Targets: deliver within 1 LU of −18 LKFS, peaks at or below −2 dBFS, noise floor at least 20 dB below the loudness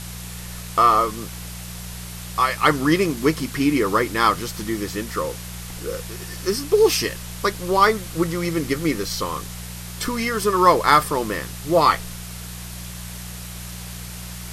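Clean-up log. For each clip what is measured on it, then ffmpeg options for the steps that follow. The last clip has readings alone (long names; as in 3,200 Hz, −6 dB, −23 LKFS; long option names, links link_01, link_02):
mains hum 60 Hz; hum harmonics up to 180 Hz; level of the hum −34 dBFS; background noise floor −35 dBFS; target noise floor −41 dBFS; integrated loudness −20.5 LKFS; sample peak −2.5 dBFS; target loudness −18.0 LKFS
→ -af "bandreject=frequency=60:width_type=h:width=4,bandreject=frequency=120:width_type=h:width=4,bandreject=frequency=180:width_type=h:width=4"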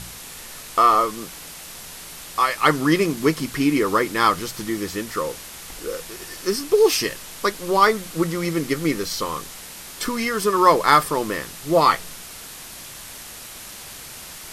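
mains hum none found; background noise floor −39 dBFS; target noise floor −41 dBFS
→ -af "afftdn=noise_reduction=6:noise_floor=-39"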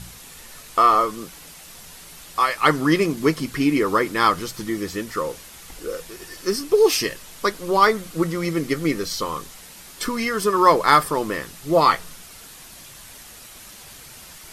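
background noise floor −43 dBFS; integrated loudness −20.5 LKFS; sample peak −3.0 dBFS; target loudness −18.0 LKFS
→ -af "volume=2.5dB,alimiter=limit=-2dB:level=0:latency=1"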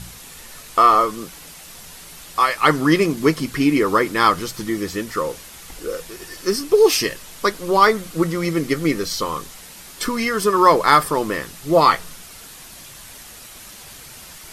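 integrated loudness −18.5 LKFS; sample peak −2.0 dBFS; background noise floor −40 dBFS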